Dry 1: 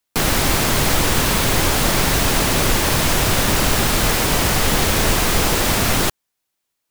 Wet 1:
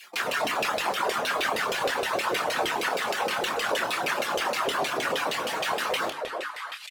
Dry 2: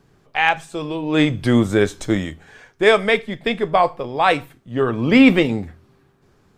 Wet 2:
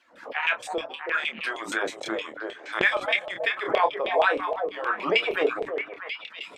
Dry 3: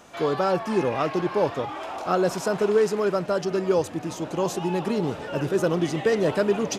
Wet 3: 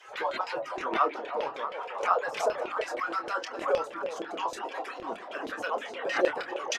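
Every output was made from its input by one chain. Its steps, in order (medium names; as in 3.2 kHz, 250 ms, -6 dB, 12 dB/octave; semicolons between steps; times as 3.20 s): harmonic-percussive separation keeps percussive; treble shelf 8.8 kHz +10 dB; on a send: repeats whose band climbs or falls 322 ms, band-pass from 520 Hz, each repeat 1.4 oct, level -5.5 dB; on the sum: peak limiter -10.5 dBFS; reverse; upward compressor, threshold -28 dBFS; reverse; high-pass 120 Hz; LFO band-pass saw down 6.4 Hz 460–3000 Hz; doubling 27 ms -8 dB; dynamic bell 2 kHz, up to -5 dB, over -45 dBFS, Q 6.4; hum notches 50/100/150/200/250/300 Hz; swell ahead of each attack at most 120 dB/s; trim +5.5 dB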